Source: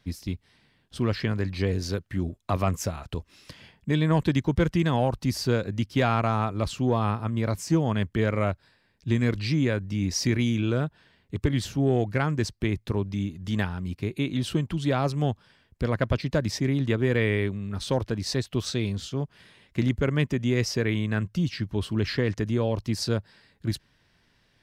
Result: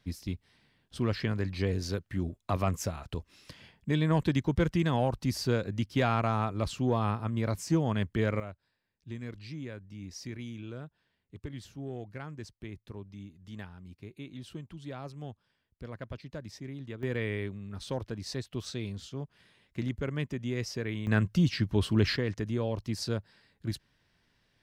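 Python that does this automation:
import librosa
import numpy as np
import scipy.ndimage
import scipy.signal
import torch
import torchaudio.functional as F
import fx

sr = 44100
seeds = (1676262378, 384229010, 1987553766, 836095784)

y = fx.gain(x, sr, db=fx.steps((0.0, -4.0), (8.4, -16.5), (17.03, -9.0), (21.07, 1.0), (22.16, -6.0)))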